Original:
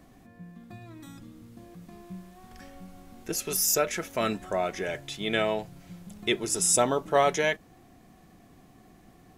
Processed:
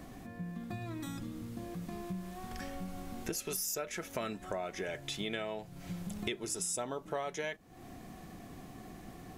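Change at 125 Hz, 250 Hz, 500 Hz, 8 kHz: -2.5 dB, -5.0 dB, -11.5 dB, -11.0 dB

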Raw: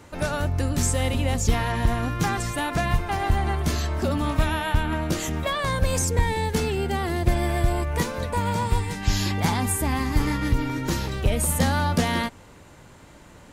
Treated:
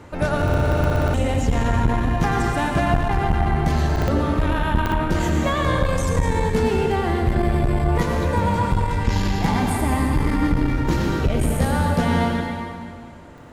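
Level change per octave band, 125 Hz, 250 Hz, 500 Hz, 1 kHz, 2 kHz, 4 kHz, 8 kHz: +4.0 dB, +5.5 dB, +5.0 dB, +4.0 dB, +2.5 dB, -1.5 dB, -6.5 dB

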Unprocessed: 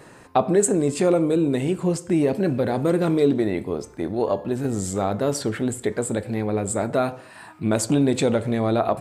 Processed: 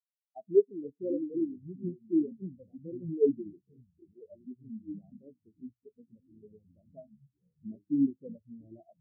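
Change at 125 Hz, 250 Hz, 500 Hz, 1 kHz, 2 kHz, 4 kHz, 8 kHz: -21.0 dB, -11.5 dB, -12.0 dB, under -30 dB, under -40 dB, under -40 dB, under -40 dB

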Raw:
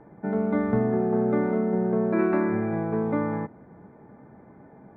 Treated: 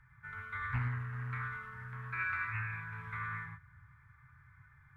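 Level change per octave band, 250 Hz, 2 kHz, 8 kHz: -30.0 dB, +1.5 dB, no reading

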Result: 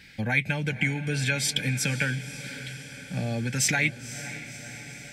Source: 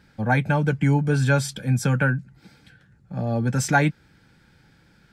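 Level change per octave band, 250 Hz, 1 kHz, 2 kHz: -7.5 dB, -12.0 dB, -0.5 dB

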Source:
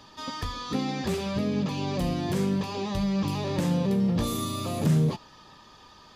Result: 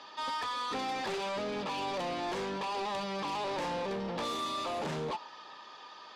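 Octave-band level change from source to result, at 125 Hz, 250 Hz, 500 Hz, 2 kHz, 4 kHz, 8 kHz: -19.5 dB, -14.5 dB, -4.0 dB, +0.5 dB, -2.0 dB, -8.0 dB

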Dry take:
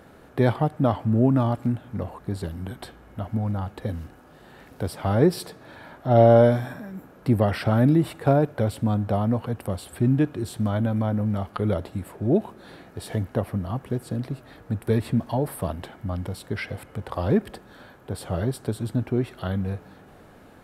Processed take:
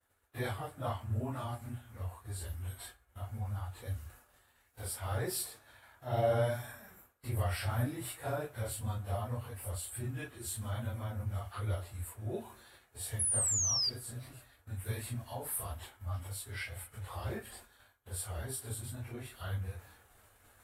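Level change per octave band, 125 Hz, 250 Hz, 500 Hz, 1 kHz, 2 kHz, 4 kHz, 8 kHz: -13.0 dB, -22.5 dB, -16.5 dB, -13.0 dB, -8.5 dB, 0.0 dB, +9.5 dB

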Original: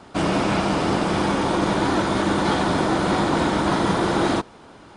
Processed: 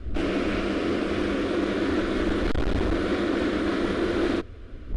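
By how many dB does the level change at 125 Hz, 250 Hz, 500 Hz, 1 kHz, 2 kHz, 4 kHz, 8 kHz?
-6.5 dB, -3.5 dB, -3.5 dB, -12.5 dB, -5.0 dB, -7.0 dB, under -10 dB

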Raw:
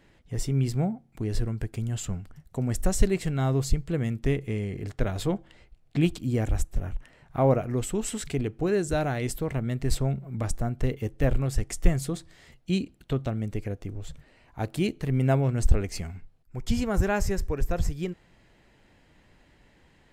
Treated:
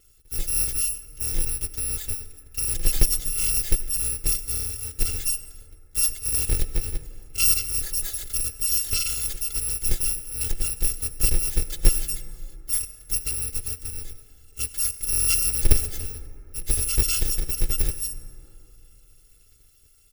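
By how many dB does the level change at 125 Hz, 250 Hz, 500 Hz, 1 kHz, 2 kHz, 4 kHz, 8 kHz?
-7.0 dB, -15.0 dB, -13.5 dB, -12.0 dB, +0.5 dB, +10.5 dB, +15.5 dB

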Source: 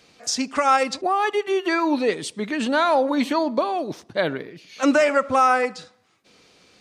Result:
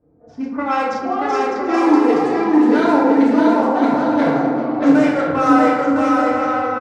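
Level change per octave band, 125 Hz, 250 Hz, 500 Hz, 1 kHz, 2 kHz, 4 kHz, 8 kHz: +9.5 dB, +11.5 dB, +4.5 dB, +4.5 dB, +1.5 dB, -5.0 dB, no reading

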